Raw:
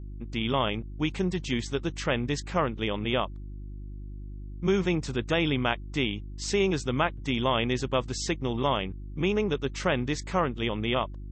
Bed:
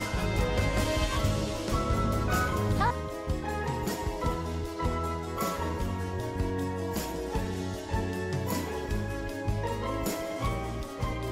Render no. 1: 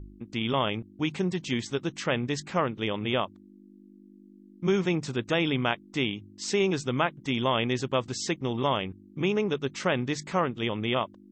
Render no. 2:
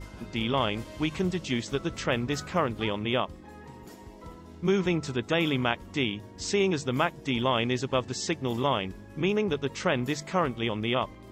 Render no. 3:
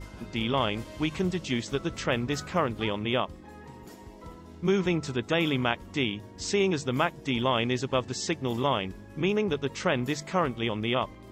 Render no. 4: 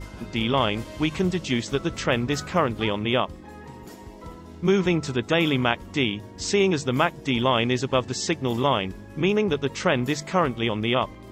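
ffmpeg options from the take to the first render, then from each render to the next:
-af "bandreject=f=50:t=h:w=4,bandreject=f=100:t=h:w=4,bandreject=f=150:t=h:w=4"
-filter_complex "[1:a]volume=0.168[s0];[0:a][s0]amix=inputs=2:normalize=0"
-af anull
-af "volume=1.68"

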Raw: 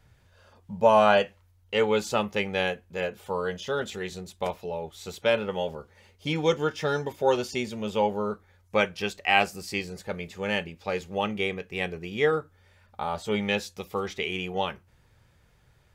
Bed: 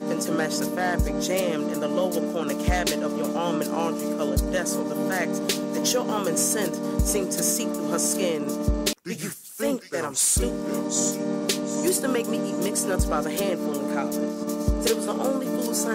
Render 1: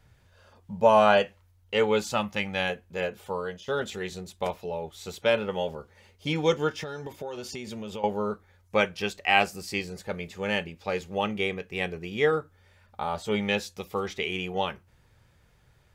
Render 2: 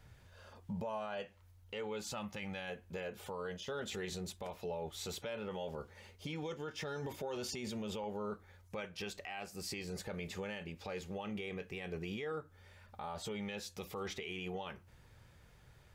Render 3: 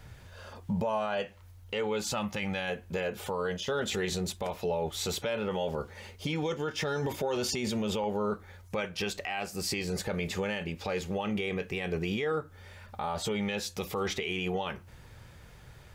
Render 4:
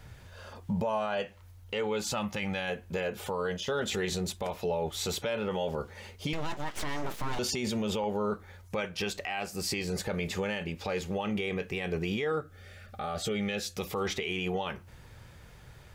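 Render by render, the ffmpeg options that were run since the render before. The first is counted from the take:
-filter_complex "[0:a]asettb=1/sr,asplit=3[s0][s1][s2];[s0]atrim=end=2.044[s3];[s1]atrim=start=2.04:end=2.7,asetpts=PTS-STARTPTS,afade=t=in:d=0.004:c=qsin,afade=t=out:st=0.656:d=0.004:c=qsin,equalizer=f=420:t=o:w=0.37:g=-15[s4];[s2]atrim=start=2.696[s5];[s3][s4]acrossfade=d=0.004:c1=hsin:c2=qsin[s6];[s6][s5]acrossfade=d=0.004:c1=qsin:c2=hsin,asettb=1/sr,asplit=3[s7][s8][s9];[s7]atrim=end=6.834[s10];[s8]atrim=start=6.83:end=8.04,asetpts=PTS-STARTPTS,afade=t=in:d=0.004:c=qsin,afade=t=out:st=1.206:d=0.004:c=qsin,acompressor=threshold=0.0251:ratio=10:attack=3.2:release=140:knee=1:detection=peak[s11];[s9]atrim=start=8.036[s12];[s10][s11]acrossfade=d=0.004:c1=hsin:c2=qsin[s13];[s13][s12]acrossfade=d=0.004:c1=qsin:c2=hsin,asplit=2[s14][s15];[s14]atrim=end=3.68,asetpts=PTS-STARTPTS,afade=t=out:st=3.21:d=0.47:silence=0.334965[s16];[s15]atrim=start=3.68,asetpts=PTS-STARTPTS,afade=t=in:d=0.004:c=hsin:silence=0.334965[s17];[s16][s17]concat=n=2:v=0:a=1"
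-af "acompressor=threshold=0.0224:ratio=8,alimiter=level_in=2.82:limit=0.0631:level=0:latency=1:release=20,volume=0.355"
-af "volume=3.16"
-filter_complex "[0:a]asettb=1/sr,asplit=3[s0][s1][s2];[s0]atrim=end=6.334[s3];[s1]atrim=start=6.33:end=7.39,asetpts=PTS-STARTPTS,afade=t=in:d=0.004:c=qsin,afade=t=out:st=1.056:d=0.004:c=qsin,aeval=exprs='abs(val(0))':c=same[s4];[s2]atrim=start=7.386[s5];[s3][s4]acrossfade=d=0.004:c1=hsin:c2=qsin[s6];[s6][s5]acrossfade=d=0.004:c1=qsin:c2=hsin,asettb=1/sr,asplit=3[s7][s8][s9];[s7]atrim=end=12.404[s10];[s8]atrim=start=12.4:end=13.78,asetpts=PTS-STARTPTS,afade=t=in:d=0.004:c=qsin,afade=t=out:st=1.376:d=0.004:c=qsin,asuperstop=centerf=950:order=8:qfactor=3.3[s11];[s9]atrim=start=13.776[s12];[s10][s11]acrossfade=d=0.004:c1=hsin:c2=qsin[s13];[s13][s12]acrossfade=d=0.004:c1=qsin:c2=hsin"

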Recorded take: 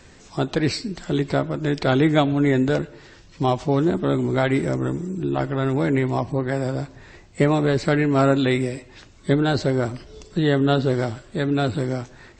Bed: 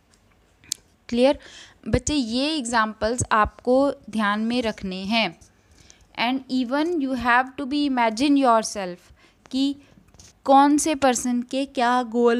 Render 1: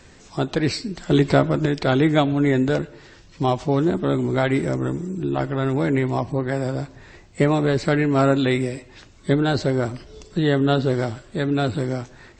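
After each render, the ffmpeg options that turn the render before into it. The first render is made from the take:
-filter_complex "[0:a]asettb=1/sr,asplit=3[s0][s1][s2];[s0]atrim=end=1.104[s3];[s1]atrim=start=1.1:end=1.66,asetpts=PTS-STARTPTS,afade=t=in:d=0.004:c=qsin,afade=t=out:st=0.556:d=0.004:c=qsin,acontrast=44[s4];[s2]atrim=start=1.656[s5];[s3][s4]acrossfade=d=0.004:c1=hsin:c2=qsin[s6];[s6][s5]acrossfade=d=0.004:c1=qsin:c2=hsin"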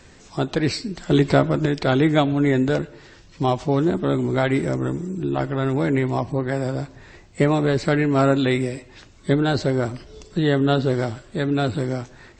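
-af anull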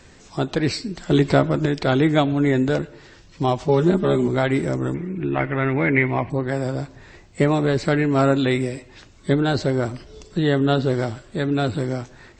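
-filter_complex "[0:a]asettb=1/sr,asplit=3[s0][s1][s2];[s0]atrim=end=3.684[s3];[s1]atrim=start=3.68:end=4.28,asetpts=PTS-STARTPTS,afade=t=in:d=0.004:c=qsin,afade=t=out:st=0.596:d=0.004:c=qsin,aecho=1:1:5:0.97,atrim=end_sample=26460[s4];[s2]atrim=start=4.276[s5];[s3][s4]acrossfade=d=0.004:c1=hsin:c2=qsin[s6];[s6][s5]acrossfade=d=0.004:c1=qsin:c2=hsin,asettb=1/sr,asplit=3[s7][s8][s9];[s7]atrim=end=4.944[s10];[s8]atrim=start=4.94:end=6.3,asetpts=PTS-STARTPTS,afade=t=in:d=0.004:c=qsin,afade=t=out:st=1.356:d=0.004:c=qsin,lowpass=f=2200:t=q:w=5.1[s11];[s9]atrim=start=6.296[s12];[s10][s11]acrossfade=d=0.004:c1=hsin:c2=qsin[s13];[s13][s12]acrossfade=d=0.004:c1=qsin:c2=hsin"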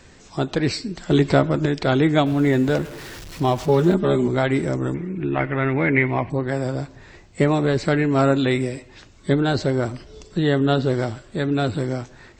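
-filter_complex "[0:a]asettb=1/sr,asplit=3[s0][s1][s2];[s0]atrim=end=2.264[s3];[s1]atrim=start=2.26:end=3.94,asetpts=PTS-STARTPTS,afade=t=in:d=0.004:c=qsin,afade=t=out:st=1.676:d=0.004:c=qsin,aeval=exprs='val(0)+0.5*0.0211*sgn(val(0))':c=same[s4];[s2]atrim=start=3.936[s5];[s3][s4]acrossfade=d=0.004:c1=hsin:c2=qsin[s6];[s6][s5]acrossfade=d=0.004:c1=qsin:c2=hsin"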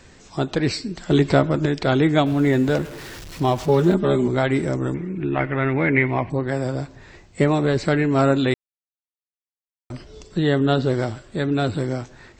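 -filter_complex "[0:a]asplit=3[s0][s1][s2];[s0]atrim=end=8.54,asetpts=PTS-STARTPTS,afade=t=out:st=8.536:d=0.004:c=hsin[s3];[s1]atrim=start=8.54:end=9.9,asetpts=PTS-STARTPTS,volume=0[s4];[s2]atrim=start=9.9,asetpts=PTS-STARTPTS,afade=t=in:d=0.004:c=hsin[s5];[s3][s4][s5]concat=n=3:v=0:a=1"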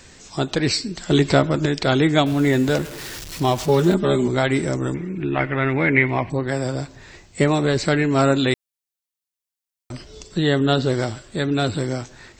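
-af "highshelf=f=3000:g=9"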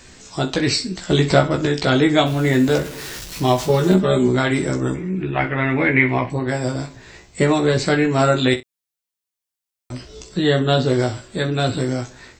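-filter_complex "[0:a]asplit=2[s0][s1];[s1]adelay=27,volume=0.251[s2];[s0][s2]amix=inputs=2:normalize=0,aecho=1:1:16|64:0.596|0.211"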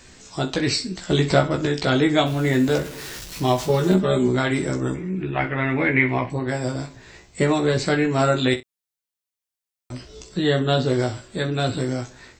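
-af "volume=0.708"

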